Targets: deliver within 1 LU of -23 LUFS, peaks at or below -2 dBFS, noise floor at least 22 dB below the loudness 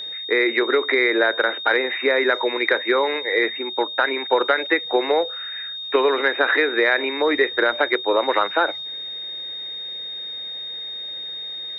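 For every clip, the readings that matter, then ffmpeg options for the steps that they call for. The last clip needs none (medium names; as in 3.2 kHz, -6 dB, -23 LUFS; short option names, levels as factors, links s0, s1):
steady tone 3.7 kHz; tone level -29 dBFS; loudness -21.0 LUFS; peak level -5.0 dBFS; loudness target -23.0 LUFS
-> -af "bandreject=f=3700:w=30"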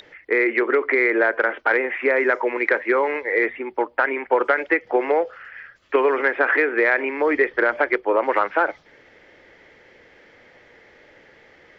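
steady tone not found; loudness -20.5 LUFS; peak level -5.5 dBFS; loudness target -23.0 LUFS
-> -af "volume=0.75"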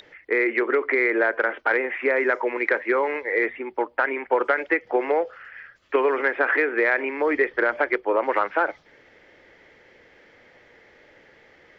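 loudness -23.0 LUFS; peak level -8.0 dBFS; noise floor -55 dBFS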